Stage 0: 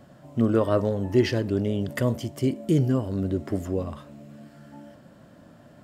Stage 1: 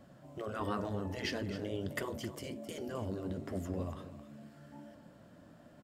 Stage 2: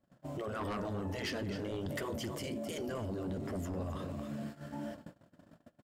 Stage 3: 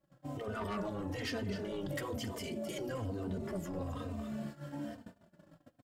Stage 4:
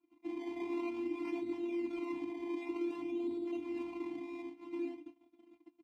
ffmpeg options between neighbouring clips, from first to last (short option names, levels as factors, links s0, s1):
-af "afftfilt=real='re*lt(hypot(re,im),0.316)':imag='im*lt(hypot(re,im),0.316)':win_size=1024:overlap=0.75,flanger=delay=3.4:depth=8.5:regen=-66:speed=1.4:shape=sinusoidal,aecho=1:1:263:0.224,volume=0.75"
-filter_complex "[0:a]asplit=2[s0][s1];[s1]aeval=exprs='0.0891*sin(PI/2*3.16*val(0)/0.0891)':c=same,volume=0.562[s2];[s0][s2]amix=inputs=2:normalize=0,agate=range=0.0224:threshold=0.00794:ratio=16:detection=peak,alimiter=level_in=2.51:limit=0.0631:level=0:latency=1:release=50,volume=0.398"
-filter_complex "[0:a]asplit=2[s0][s1];[s1]adelay=3.1,afreqshift=-1.1[s2];[s0][s2]amix=inputs=2:normalize=1,volume=1.33"
-filter_complex "[0:a]acrusher=samples=22:mix=1:aa=0.000001:lfo=1:lforange=22:lforate=0.52,afftfilt=real='hypot(re,im)*cos(PI*b)':imag='0':win_size=512:overlap=0.75,asplit=3[s0][s1][s2];[s0]bandpass=f=300:t=q:w=8,volume=1[s3];[s1]bandpass=f=870:t=q:w=8,volume=0.501[s4];[s2]bandpass=f=2240:t=q:w=8,volume=0.355[s5];[s3][s4][s5]amix=inputs=3:normalize=0,volume=5.62"